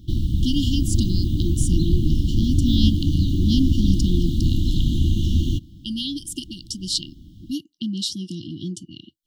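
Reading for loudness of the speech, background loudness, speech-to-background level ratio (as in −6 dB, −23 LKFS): −27.0 LKFS, −22.5 LKFS, −4.5 dB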